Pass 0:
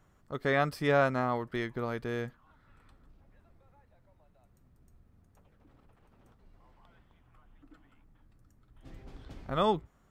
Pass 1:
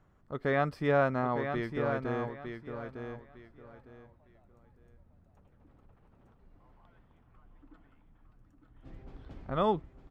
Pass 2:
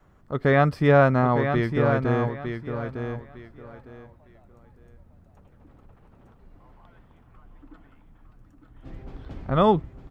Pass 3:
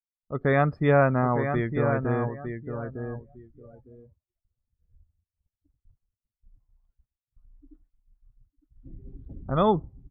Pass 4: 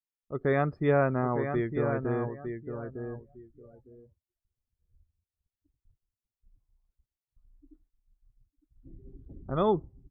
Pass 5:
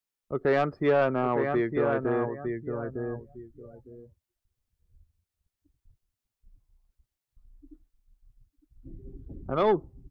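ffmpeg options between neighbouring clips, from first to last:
ffmpeg -i in.wav -af "lowpass=frequency=1800:poles=1,aecho=1:1:906|1812|2718:0.447|0.107|0.0257" out.wav
ffmpeg -i in.wav -af "adynamicequalizer=threshold=0.00355:dfrequency=110:dqfactor=0.84:tfrequency=110:tqfactor=0.84:attack=5:release=100:ratio=0.375:range=3:mode=boostabove:tftype=bell,volume=8.5dB" out.wav
ffmpeg -i in.wav -af "afftdn=noise_reduction=30:noise_floor=-36,agate=range=-33dB:threshold=-52dB:ratio=3:detection=peak,volume=-3dB" out.wav
ffmpeg -i in.wav -af "equalizer=frequency=370:width=2.5:gain=6.5,volume=-6dB" out.wav
ffmpeg -i in.wav -filter_complex "[0:a]acrossover=split=250[link_01][link_02];[link_01]acompressor=threshold=-43dB:ratio=6[link_03];[link_02]asoftclip=type=tanh:threshold=-21.5dB[link_04];[link_03][link_04]amix=inputs=2:normalize=0,volume=5.5dB" out.wav

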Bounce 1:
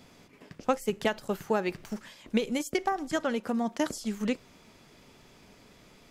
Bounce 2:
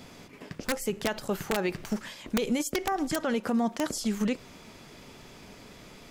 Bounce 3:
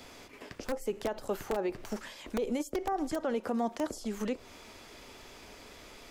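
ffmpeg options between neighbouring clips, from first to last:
ffmpeg -i in.wav -af "aeval=exprs='(mod(6.68*val(0)+1,2)-1)/6.68':channel_layout=same,alimiter=level_in=2.5dB:limit=-24dB:level=0:latency=1:release=81,volume=-2.5dB,volume=7dB" out.wav
ffmpeg -i in.wav -filter_complex "[0:a]equalizer=frequency=160:width_type=o:width=1:gain=-14,acrossover=split=310|990[link_01][link_02][link_03];[link_03]acompressor=threshold=-44dB:ratio=10[link_04];[link_01][link_02][link_04]amix=inputs=3:normalize=0" out.wav

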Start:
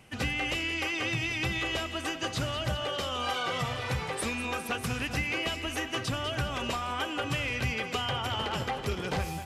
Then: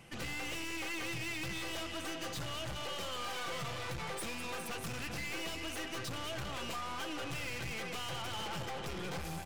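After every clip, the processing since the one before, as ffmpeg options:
ffmpeg -i in.wav -af "aeval=exprs='(tanh(100*val(0)+0.45)-tanh(0.45))/100':channel_layout=same,aecho=1:1:5.9:0.35,volume=1dB" out.wav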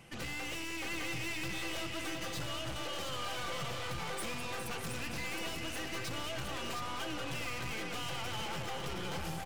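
ffmpeg -i in.wav -af "aecho=1:1:716:0.501" out.wav

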